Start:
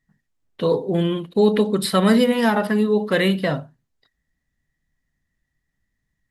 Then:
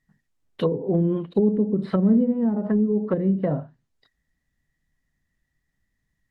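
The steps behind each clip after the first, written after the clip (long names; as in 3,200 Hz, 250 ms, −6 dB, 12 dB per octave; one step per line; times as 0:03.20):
treble cut that deepens with the level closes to 300 Hz, closed at −15 dBFS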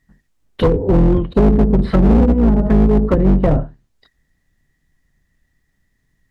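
sub-octave generator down 2 octaves, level +1 dB
hard clipping −16.5 dBFS, distortion −10 dB
level +9 dB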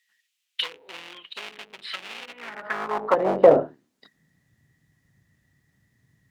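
high-pass filter sweep 2,800 Hz → 110 Hz, 0:02.27–0:04.49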